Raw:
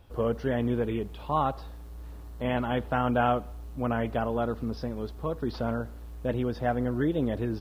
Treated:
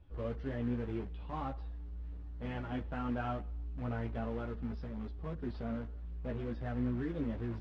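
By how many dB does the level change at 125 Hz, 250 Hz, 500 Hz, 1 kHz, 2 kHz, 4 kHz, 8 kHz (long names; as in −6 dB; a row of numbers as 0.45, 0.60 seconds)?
−6.5 dB, −8.0 dB, −13.0 dB, −14.0 dB, −11.5 dB, −13.5 dB, can't be measured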